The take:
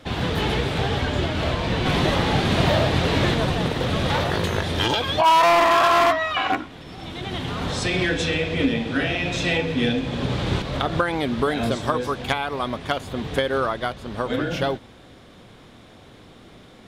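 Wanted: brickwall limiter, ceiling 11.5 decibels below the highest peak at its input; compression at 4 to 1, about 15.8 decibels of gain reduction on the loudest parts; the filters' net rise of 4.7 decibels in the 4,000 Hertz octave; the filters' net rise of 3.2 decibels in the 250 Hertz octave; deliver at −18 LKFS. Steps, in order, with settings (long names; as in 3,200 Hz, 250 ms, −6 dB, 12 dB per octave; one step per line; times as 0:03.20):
parametric band 250 Hz +4 dB
parametric band 4,000 Hz +6 dB
downward compressor 4 to 1, threshold −33 dBFS
level +19.5 dB
brickwall limiter −9 dBFS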